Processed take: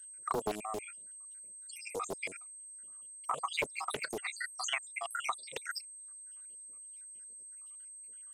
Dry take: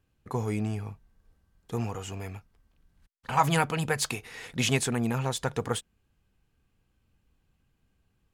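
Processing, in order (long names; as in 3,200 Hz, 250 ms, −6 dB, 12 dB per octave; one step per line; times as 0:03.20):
time-frequency cells dropped at random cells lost 82%
treble cut that deepens with the level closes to 3,000 Hz, closed at −35 dBFS
high-pass filter 510 Hz 12 dB per octave
parametric band 1,200 Hz +11 dB 0.22 octaves
output level in coarse steps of 13 dB
0:03.54–0:04.05: leveller curve on the samples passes 1
downward compressor 4 to 1, threshold −48 dBFS, peak gain reduction 11.5 dB
steady tone 8,300 Hz −64 dBFS
notch comb filter 860 Hz
highs frequency-modulated by the lows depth 0.8 ms
level +17 dB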